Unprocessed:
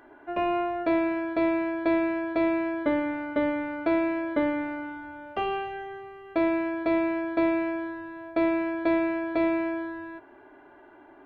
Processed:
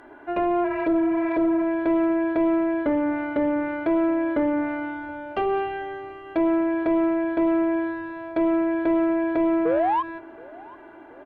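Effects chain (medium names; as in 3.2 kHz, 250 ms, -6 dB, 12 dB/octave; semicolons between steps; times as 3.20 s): spectral replace 0.67–1.61 s, 660–2800 Hz after; low-pass that closes with the level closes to 1.4 kHz, closed at -24 dBFS; dynamic bell 390 Hz, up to +4 dB, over -36 dBFS, Q 2.3; in parallel at -1 dB: peak limiter -22 dBFS, peak gain reduction 9.5 dB; on the sum: painted sound rise, 9.65–10.03 s, 450–1100 Hz -20 dBFS; saturation -14.5 dBFS, distortion -20 dB; on a send: feedback delay 724 ms, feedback 54%, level -23 dB; on the sum: endings held to a fixed fall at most 290 dB/s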